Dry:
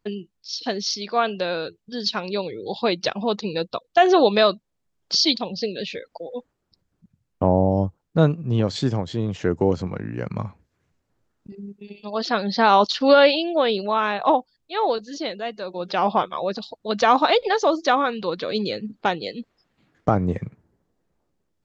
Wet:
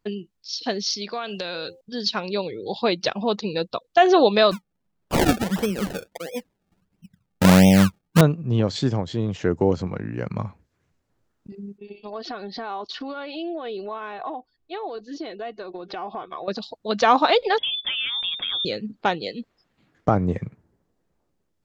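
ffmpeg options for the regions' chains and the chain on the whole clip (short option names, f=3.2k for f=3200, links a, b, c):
-filter_complex "[0:a]asettb=1/sr,asplit=3[a][b][c];[a]atrim=end=1.134[d];[b]atrim=start=1.13:end=1.81,asetpts=PTS-STARTPTS,afade=t=in:d=0.004:c=qsin,afade=t=out:st=0.676:d=0.004:c=qsin,highshelf=f=2.5k:g=10.5,bandreject=f=262.9:t=h:w=4,bandreject=f=525.8:t=h:w=4,bandreject=f=788.7:t=h:w=4,acompressor=threshold=-26dB:ratio=5:attack=3.2:release=140:knee=1:detection=peak[e];[c]atrim=start=1.806[f];[d][e]acrossfade=d=0.004:c1=hsin:c2=qsin[g];[g][f]acrossfade=d=0.004:c1=qsin:c2=hsin,asettb=1/sr,asplit=3[h][i][j];[h]atrim=end=4.514[k];[i]atrim=start=4.51:end=8.21,asetpts=PTS-STARTPTS,afade=t=in:d=0.004:c=qsin,afade=t=out:st=3.696:d=0.004:c=qsin,equalizer=f=190:w=2.8:g=10.5,acrusher=samples=30:mix=1:aa=0.000001:lfo=1:lforange=30:lforate=1.5[l];[j]atrim=start=8.206[m];[k][l]acrossfade=d=0.004:c1=hsin:c2=qsin[n];[n][m]acrossfade=d=0.004:c1=qsin:c2=hsin,asettb=1/sr,asplit=3[o][p][q];[o]atrim=end=11.784[r];[p]atrim=start=11.78:end=16.48,asetpts=PTS-STARTPTS,afade=t=in:d=0.004:c=qsin,afade=t=out:st=4.696:d=0.004:c=qsin,lowpass=f=2k:p=1,acompressor=threshold=-30dB:ratio=5:attack=3.2:release=140:knee=1:detection=peak,aecho=1:1:2.7:0.49,atrim=end_sample=207270[s];[q]atrim=start=16.476[t];[r][s]acrossfade=d=0.004:c1=hsin:c2=qsin[u];[u][t]acrossfade=d=0.004:c1=qsin:c2=hsin,asettb=1/sr,asplit=3[v][w][x];[v]atrim=end=17.584[y];[w]atrim=start=17.58:end=18.65,asetpts=PTS-STARTPTS,afade=t=in:d=0.004:c=qsin,afade=t=out:st=1.066:d=0.004:c=qsin,lowshelf=f=220:g=10,acompressor=threshold=-22dB:ratio=12:attack=3.2:release=140:knee=1:detection=peak,lowpass=f=3.2k:t=q:w=0.5098,lowpass=f=3.2k:t=q:w=0.6013,lowpass=f=3.2k:t=q:w=0.9,lowpass=f=3.2k:t=q:w=2.563,afreqshift=-3800[z];[x]atrim=start=18.646[aa];[y][z]acrossfade=d=0.004:c1=hsin:c2=qsin[ab];[ab][aa]acrossfade=d=0.004:c1=qsin:c2=hsin"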